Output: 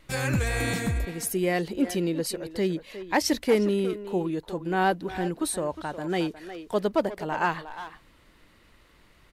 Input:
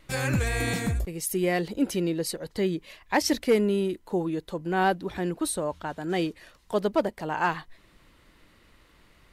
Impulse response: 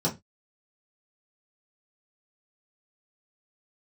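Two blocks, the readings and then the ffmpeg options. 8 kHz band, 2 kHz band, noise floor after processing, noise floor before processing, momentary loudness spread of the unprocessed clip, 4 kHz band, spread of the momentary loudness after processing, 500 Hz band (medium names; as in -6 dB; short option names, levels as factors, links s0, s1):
0.0 dB, 0.0 dB, -58 dBFS, -60 dBFS, 7 LU, 0.0 dB, 8 LU, 0.0 dB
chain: -filter_complex "[0:a]asplit=2[s0][s1];[s1]adelay=360,highpass=300,lowpass=3400,asoftclip=type=hard:threshold=0.0794,volume=0.316[s2];[s0][s2]amix=inputs=2:normalize=0"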